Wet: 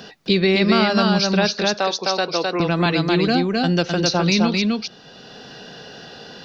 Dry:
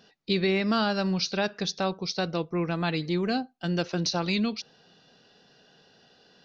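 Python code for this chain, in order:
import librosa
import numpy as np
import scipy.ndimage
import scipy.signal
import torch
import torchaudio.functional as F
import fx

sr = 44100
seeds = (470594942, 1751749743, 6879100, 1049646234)

y = fx.highpass(x, sr, hz=420.0, slope=12, at=(1.58, 2.6))
y = y + 10.0 ** (-3.0 / 20.0) * np.pad(y, (int(259 * sr / 1000.0), 0))[:len(y)]
y = fx.band_squash(y, sr, depth_pct=40)
y = F.gain(torch.from_numpy(y), 8.0).numpy()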